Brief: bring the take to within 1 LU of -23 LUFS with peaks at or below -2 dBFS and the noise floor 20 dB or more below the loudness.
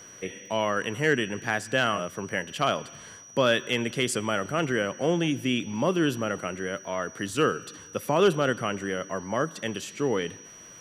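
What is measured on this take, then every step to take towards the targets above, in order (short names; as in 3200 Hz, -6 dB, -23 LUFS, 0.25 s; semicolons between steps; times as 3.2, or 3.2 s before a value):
ticks 20/s; steady tone 5800 Hz; tone level -46 dBFS; loudness -27.5 LUFS; peak -11.5 dBFS; loudness target -23.0 LUFS
-> de-click; notch 5800 Hz, Q 30; gain +4.5 dB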